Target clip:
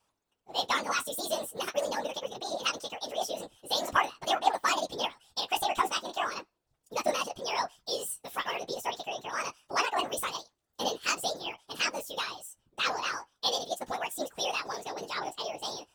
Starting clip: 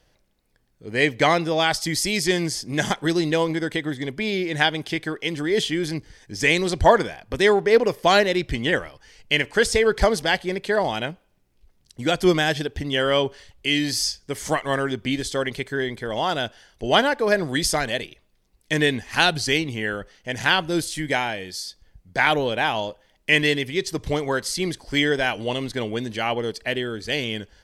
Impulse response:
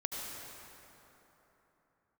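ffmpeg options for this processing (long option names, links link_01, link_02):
-af "asetrate=76440,aresample=44100,bass=frequency=250:gain=-13,treble=frequency=4000:gain=-2,flanger=delay=9.2:depth=6.4:regen=25:speed=0.42:shape=sinusoidal,afftfilt=real='hypot(re,im)*cos(2*PI*random(0))':imag='hypot(re,im)*sin(2*PI*random(1))':win_size=512:overlap=0.75"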